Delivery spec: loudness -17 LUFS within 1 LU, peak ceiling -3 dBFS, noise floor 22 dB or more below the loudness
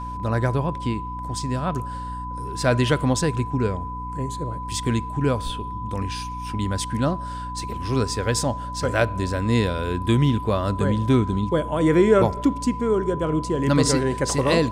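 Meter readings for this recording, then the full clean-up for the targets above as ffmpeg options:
hum 60 Hz; harmonics up to 300 Hz; hum level -31 dBFS; steady tone 1000 Hz; tone level -31 dBFS; loudness -23.5 LUFS; peak -5.5 dBFS; loudness target -17.0 LUFS
-> -af "bandreject=f=60:t=h:w=4,bandreject=f=120:t=h:w=4,bandreject=f=180:t=h:w=4,bandreject=f=240:t=h:w=4,bandreject=f=300:t=h:w=4"
-af "bandreject=f=1k:w=30"
-af "volume=6.5dB,alimiter=limit=-3dB:level=0:latency=1"

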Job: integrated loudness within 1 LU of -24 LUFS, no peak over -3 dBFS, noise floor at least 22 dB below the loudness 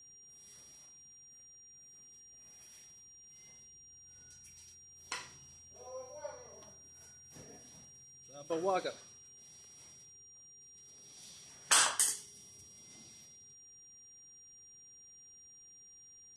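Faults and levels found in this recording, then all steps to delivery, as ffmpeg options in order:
steady tone 5700 Hz; tone level -55 dBFS; loudness -33.0 LUFS; peak -14.0 dBFS; loudness target -24.0 LUFS
-> -af "bandreject=f=5.7k:w=30"
-af "volume=9dB"

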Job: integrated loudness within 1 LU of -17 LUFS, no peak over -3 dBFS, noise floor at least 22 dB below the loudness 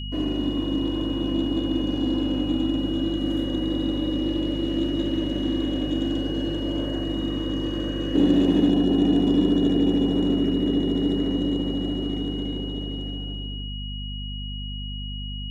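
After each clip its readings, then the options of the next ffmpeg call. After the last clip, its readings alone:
hum 50 Hz; harmonics up to 250 Hz; hum level -30 dBFS; steady tone 2900 Hz; tone level -36 dBFS; loudness -24.5 LUFS; peak -7.5 dBFS; loudness target -17.0 LUFS
-> -af "bandreject=f=50:t=h:w=6,bandreject=f=100:t=h:w=6,bandreject=f=150:t=h:w=6,bandreject=f=200:t=h:w=6,bandreject=f=250:t=h:w=6"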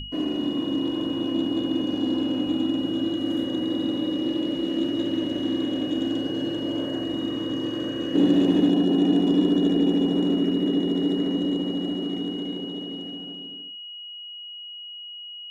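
hum none; steady tone 2900 Hz; tone level -36 dBFS
-> -af "bandreject=f=2.9k:w=30"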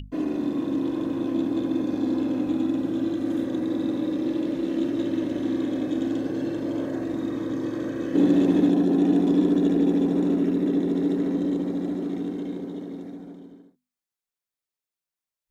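steady tone none; loudness -25.0 LUFS; peak -9.0 dBFS; loudness target -17.0 LUFS
-> -af "volume=8dB,alimiter=limit=-3dB:level=0:latency=1"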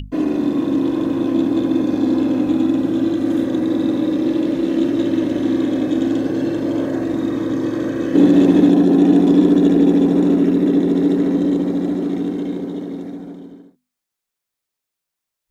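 loudness -17.0 LUFS; peak -3.0 dBFS; noise floor -82 dBFS

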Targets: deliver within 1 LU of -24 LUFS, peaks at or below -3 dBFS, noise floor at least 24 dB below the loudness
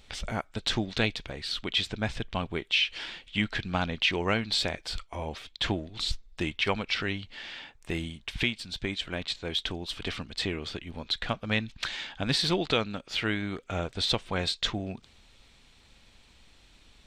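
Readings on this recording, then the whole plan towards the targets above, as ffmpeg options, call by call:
loudness -30.5 LUFS; peak -12.5 dBFS; loudness target -24.0 LUFS
-> -af "volume=6.5dB"

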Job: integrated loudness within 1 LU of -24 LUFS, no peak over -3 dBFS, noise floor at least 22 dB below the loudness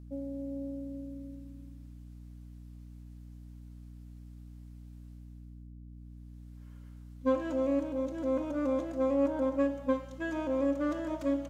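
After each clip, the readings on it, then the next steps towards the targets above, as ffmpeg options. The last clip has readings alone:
hum 60 Hz; harmonics up to 300 Hz; hum level -45 dBFS; loudness -32.5 LUFS; peak -16.5 dBFS; loudness target -24.0 LUFS
-> -af "bandreject=f=60:t=h:w=4,bandreject=f=120:t=h:w=4,bandreject=f=180:t=h:w=4,bandreject=f=240:t=h:w=4,bandreject=f=300:t=h:w=4"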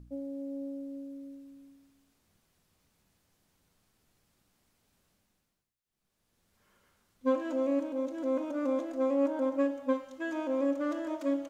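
hum none; loudness -32.5 LUFS; peak -16.5 dBFS; loudness target -24.0 LUFS
-> -af "volume=8.5dB"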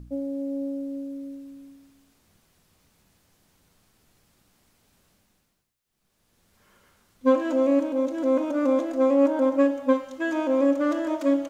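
loudness -24.0 LUFS; peak -8.0 dBFS; noise floor -73 dBFS

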